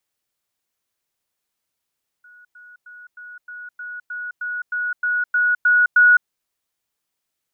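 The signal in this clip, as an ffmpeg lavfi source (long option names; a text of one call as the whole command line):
ffmpeg -f lavfi -i "aevalsrc='pow(10,(-44.5+3*floor(t/0.31))/20)*sin(2*PI*1460*t)*clip(min(mod(t,0.31),0.21-mod(t,0.31))/0.005,0,1)':duration=4.03:sample_rate=44100" out.wav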